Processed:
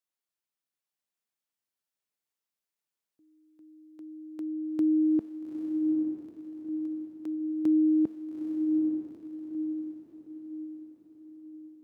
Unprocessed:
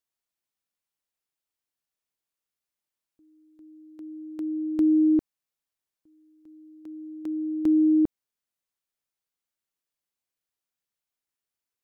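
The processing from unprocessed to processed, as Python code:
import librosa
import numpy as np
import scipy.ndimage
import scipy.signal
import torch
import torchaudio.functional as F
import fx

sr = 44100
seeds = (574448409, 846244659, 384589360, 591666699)

y = scipy.signal.sosfilt(scipy.signal.butter(2, 110.0, 'highpass', fs=sr, output='sos'), x)
y = fx.comb_fb(y, sr, f0_hz=220.0, decay_s=0.39, harmonics='all', damping=0.0, mix_pct=40)
y = fx.echo_diffused(y, sr, ms=860, feedback_pct=47, wet_db=-3.5)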